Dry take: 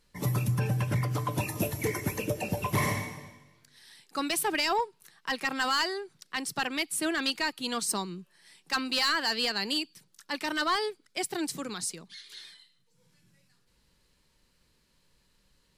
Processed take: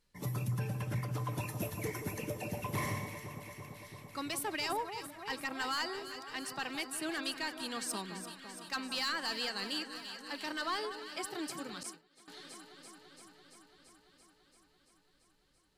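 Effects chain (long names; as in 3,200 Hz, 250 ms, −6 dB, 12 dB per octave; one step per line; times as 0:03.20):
on a send: delay that swaps between a low-pass and a high-pass 169 ms, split 1,400 Hz, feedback 86%, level −9 dB
0:11.83–0:12.28: on the sum: downward expander −28 dBFS
level −8.5 dB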